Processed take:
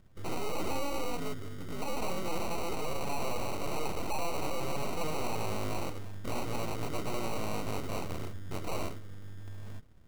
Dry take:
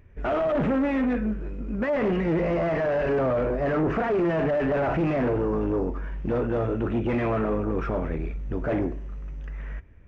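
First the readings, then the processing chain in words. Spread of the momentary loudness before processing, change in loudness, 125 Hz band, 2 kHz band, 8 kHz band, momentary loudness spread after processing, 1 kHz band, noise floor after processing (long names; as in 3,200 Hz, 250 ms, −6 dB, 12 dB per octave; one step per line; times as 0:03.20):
9 LU, −11.0 dB, −10.0 dB, −9.0 dB, can't be measured, 7 LU, −5.5 dB, −41 dBFS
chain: decimation without filtering 26×
full-wave rectification
level −6 dB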